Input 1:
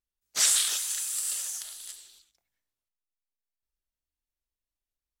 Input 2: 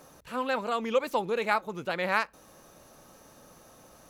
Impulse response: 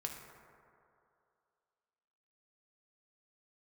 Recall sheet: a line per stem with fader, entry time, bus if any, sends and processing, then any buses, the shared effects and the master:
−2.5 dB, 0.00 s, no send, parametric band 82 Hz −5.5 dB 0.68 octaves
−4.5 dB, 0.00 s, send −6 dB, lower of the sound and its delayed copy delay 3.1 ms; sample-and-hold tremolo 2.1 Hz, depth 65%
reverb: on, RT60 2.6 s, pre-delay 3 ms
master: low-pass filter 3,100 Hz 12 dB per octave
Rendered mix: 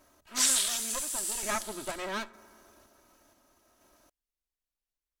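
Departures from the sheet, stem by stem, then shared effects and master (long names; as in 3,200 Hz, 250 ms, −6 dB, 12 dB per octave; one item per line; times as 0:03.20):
stem 2: send −6 dB → −12 dB
master: missing low-pass filter 3,100 Hz 12 dB per octave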